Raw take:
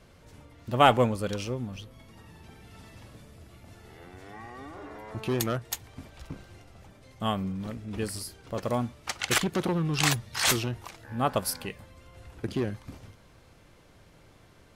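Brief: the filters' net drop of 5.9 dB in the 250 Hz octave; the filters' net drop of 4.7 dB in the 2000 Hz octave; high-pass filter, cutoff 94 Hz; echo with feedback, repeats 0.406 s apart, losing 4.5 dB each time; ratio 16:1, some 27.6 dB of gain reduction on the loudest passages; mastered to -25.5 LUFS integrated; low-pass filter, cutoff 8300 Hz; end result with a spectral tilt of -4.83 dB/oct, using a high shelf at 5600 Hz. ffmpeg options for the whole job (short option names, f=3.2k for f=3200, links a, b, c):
-af "highpass=94,lowpass=8.3k,equalizer=f=250:t=o:g=-8,equalizer=f=2k:t=o:g=-5,highshelf=f=5.6k:g=-8,acompressor=threshold=-43dB:ratio=16,aecho=1:1:406|812|1218|1624|2030|2436|2842|3248|3654:0.596|0.357|0.214|0.129|0.0772|0.0463|0.0278|0.0167|0.01,volume=22.5dB"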